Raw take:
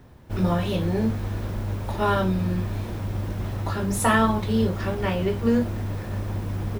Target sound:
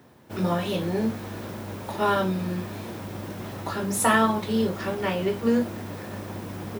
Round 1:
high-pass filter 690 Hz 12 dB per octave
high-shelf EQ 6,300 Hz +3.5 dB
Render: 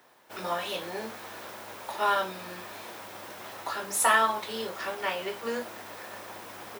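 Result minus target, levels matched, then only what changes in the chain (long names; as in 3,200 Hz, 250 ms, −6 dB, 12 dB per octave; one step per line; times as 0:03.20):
250 Hz band −14.5 dB
change: high-pass filter 180 Hz 12 dB per octave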